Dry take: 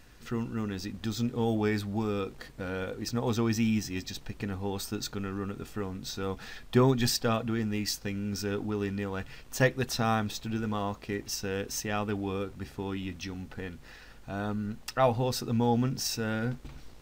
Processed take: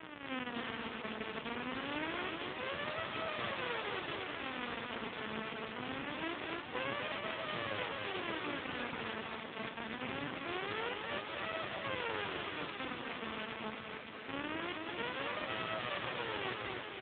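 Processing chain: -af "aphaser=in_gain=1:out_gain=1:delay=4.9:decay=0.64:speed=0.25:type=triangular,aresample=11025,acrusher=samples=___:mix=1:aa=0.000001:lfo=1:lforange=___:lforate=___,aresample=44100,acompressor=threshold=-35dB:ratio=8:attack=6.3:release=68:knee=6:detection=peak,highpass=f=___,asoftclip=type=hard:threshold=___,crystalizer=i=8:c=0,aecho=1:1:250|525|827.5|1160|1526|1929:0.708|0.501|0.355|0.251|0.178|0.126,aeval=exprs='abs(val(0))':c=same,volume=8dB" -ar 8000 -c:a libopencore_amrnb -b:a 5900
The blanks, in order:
34, 34, 0.24, 430, -38.5dB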